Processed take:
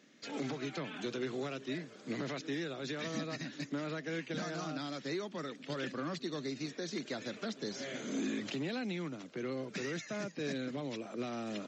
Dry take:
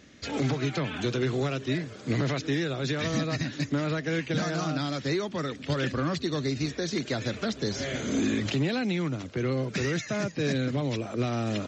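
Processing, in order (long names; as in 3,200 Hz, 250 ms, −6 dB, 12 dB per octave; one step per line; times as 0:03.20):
high-pass filter 170 Hz 24 dB per octave
level −9 dB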